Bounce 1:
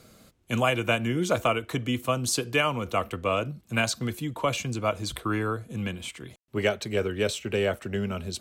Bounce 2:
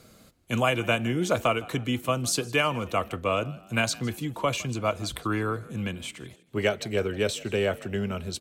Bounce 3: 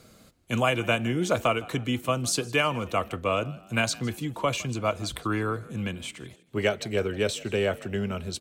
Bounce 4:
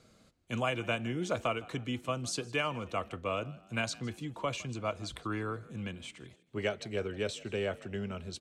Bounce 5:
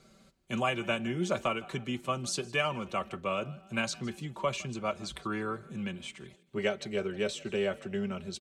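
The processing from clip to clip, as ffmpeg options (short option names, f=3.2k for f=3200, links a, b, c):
-filter_complex "[0:a]asplit=4[a][b][c][d];[b]adelay=159,afreqshift=49,volume=-21.5dB[e];[c]adelay=318,afreqshift=98,volume=-28.8dB[f];[d]adelay=477,afreqshift=147,volume=-36.2dB[g];[a][e][f][g]amix=inputs=4:normalize=0"
-af "equalizer=f=12k:w=6.1:g=-6"
-af "lowpass=8.2k,volume=-8dB"
-af "aecho=1:1:5.2:0.6,volume=1dB"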